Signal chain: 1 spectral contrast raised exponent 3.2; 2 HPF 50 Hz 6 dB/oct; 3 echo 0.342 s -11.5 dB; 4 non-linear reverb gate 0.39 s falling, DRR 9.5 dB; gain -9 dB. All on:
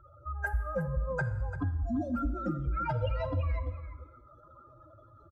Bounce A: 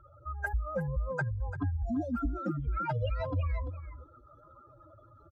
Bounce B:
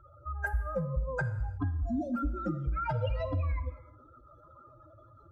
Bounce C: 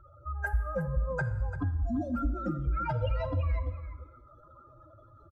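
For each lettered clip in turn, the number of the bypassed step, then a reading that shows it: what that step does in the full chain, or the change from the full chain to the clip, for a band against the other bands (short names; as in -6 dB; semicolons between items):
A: 4, echo-to-direct -7.0 dB to -11.5 dB; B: 3, echo-to-direct -7.0 dB to -9.5 dB; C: 2, loudness change +1.0 LU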